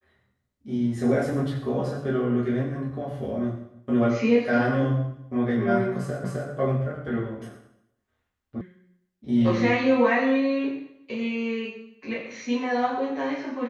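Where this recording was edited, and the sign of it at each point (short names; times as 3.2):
6.24 repeat of the last 0.26 s
8.61 sound cut off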